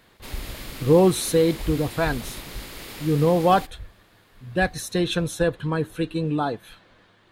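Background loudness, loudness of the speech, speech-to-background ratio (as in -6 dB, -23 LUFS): -37.5 LUFS, -23.0 LUFS, 14.5 dB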